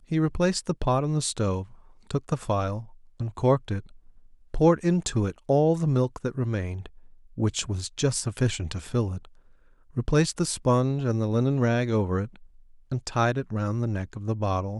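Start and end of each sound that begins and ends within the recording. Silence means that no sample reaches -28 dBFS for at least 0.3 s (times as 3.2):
2.11–2.78
3.21–3.79
4.54–6.86
7.38–9.16
9.97–12.25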